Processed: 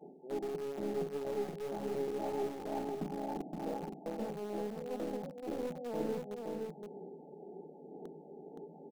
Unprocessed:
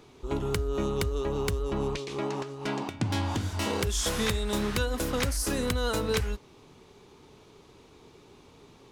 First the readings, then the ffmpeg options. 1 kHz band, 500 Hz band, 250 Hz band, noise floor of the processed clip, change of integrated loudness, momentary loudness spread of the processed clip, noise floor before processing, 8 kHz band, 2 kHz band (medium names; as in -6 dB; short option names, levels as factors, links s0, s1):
-7.0 dB, -5.5 dB, -7.5 dB, -54 dBFS, -10.0 dB, 13 LU, -56 dBFS, -23.5 dB, -19.0 dB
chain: -filter_complex "[0:a]aphaser=in_gain=1:out_gain=1:delay=2.8:decay=0.43:speed=1:type=sinusoidal,bandreject=f=50:t=h:w=6,bandreject=f=100:t=h:w=6,bandreject=f=150:t=h:w=6,bandreject=f=200:t=h:w=6,bandreject=f=250:t=h:w=6,bandreject=f=300:t=h:w=6,bandreject=f=350:t=h:w=6,adynamicequalizer=threshold=0.00794:dfrequency=330:dqfactor=0.8:tfrequency=330:tqfactor=0.8:attack=5:release=100:ratio=0.375:range=2:mode=cutabove:tftype=bell,areverse,acompressor=threshold=0.0141:ratio=6,areverse,afftfilt=real='re*between(b*sr/4096,150,890)':imag='im*between(b*sr/4096,150,890)':win_size=4096:overlap=0.75,asplit=2[s0][s1];[s1]acrusher=bits=4:dc=4:mix=0:aa=0.000001,volume=0.355[s2];[s0][s2]amix=inputs=2:normalize=0,aecho=1:1:519:0.631,volume=1.41"